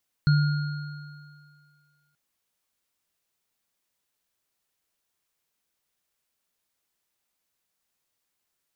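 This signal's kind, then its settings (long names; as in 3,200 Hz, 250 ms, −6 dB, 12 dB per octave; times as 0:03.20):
inharmonic partials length 1.88 s, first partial 147 Hz, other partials 1,420/4,270 Hz, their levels −14/−18 dB, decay 1.91 s, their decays 2.53/2.12 s, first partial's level −15 dB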